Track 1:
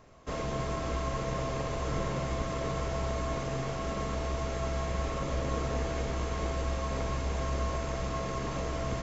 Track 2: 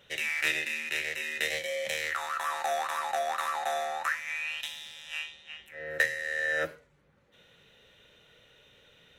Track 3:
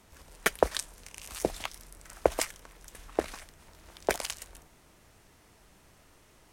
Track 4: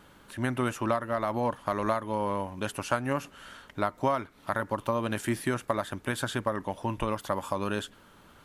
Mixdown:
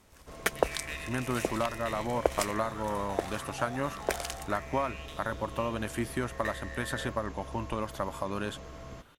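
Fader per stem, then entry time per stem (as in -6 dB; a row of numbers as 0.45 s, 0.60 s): -12.0 dB, -12.0 dB, -2.5 dB, -3.5 dB; 0.00 s, 0.45 s, 0.00 s, 0.70 s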